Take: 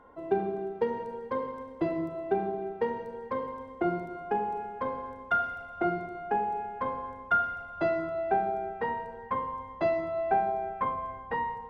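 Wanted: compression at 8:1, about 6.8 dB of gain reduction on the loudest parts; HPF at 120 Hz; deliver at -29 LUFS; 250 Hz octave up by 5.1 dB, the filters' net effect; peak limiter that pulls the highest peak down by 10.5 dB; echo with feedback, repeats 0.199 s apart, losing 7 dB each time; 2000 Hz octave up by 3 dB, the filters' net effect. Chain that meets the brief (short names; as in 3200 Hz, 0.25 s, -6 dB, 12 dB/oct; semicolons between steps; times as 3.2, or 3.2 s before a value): HPF 120 Hz; bell 250 Hz +8 dB; bell 2000 Hz +4.5 dB; compressor 8:1, threshold -26 dBFS; limiter -26 dBFS; feedback echo 0.199 s, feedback 45%, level -7 dB; gain +5 dB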